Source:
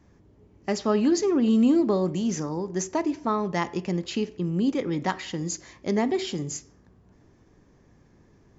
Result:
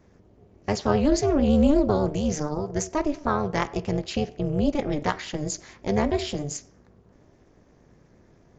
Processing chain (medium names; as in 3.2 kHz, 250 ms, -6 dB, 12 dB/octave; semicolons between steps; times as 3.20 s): AM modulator 300 Hz, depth 90%; resampled via 16 kHz; vibrato 8.6 Hz 45 cents; trim +5 dB